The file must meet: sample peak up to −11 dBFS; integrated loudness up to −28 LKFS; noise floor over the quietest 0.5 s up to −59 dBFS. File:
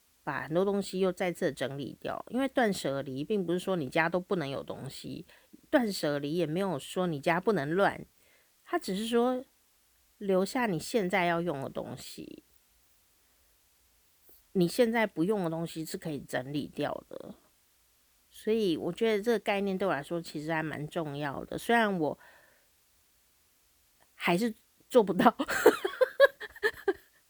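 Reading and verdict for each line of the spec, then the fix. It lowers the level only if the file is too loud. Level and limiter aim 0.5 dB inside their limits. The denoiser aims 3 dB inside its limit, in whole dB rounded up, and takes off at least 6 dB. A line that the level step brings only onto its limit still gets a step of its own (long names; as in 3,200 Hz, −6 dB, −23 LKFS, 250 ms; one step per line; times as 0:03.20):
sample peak −7.0 dBFS: out of spec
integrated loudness −30.5 LKFS: in spec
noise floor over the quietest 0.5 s −68 dBFS: in spec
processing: brickwall limiter −11.5 dBFS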